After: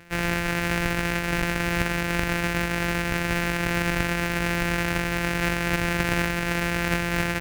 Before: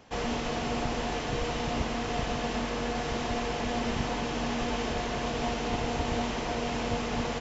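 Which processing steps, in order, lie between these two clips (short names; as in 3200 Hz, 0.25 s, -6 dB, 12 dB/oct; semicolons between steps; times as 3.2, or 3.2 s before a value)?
sample sorter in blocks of 256 samples; band shelf 2000 Hz +9.5 dB 1.1 oct; gain +4 dB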